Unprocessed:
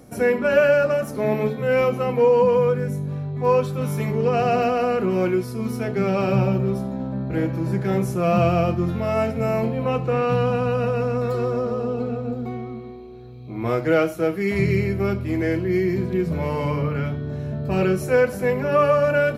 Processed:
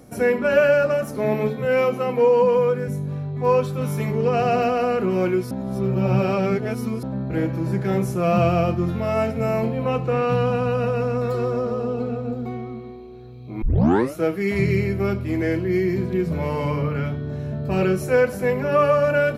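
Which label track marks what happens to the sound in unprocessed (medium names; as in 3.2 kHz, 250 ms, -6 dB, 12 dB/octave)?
1.650000	2.880000	high-pass 160 Hz
5.510000	7.030000	reverse
13.620000	13.620000	tape start 0.53 s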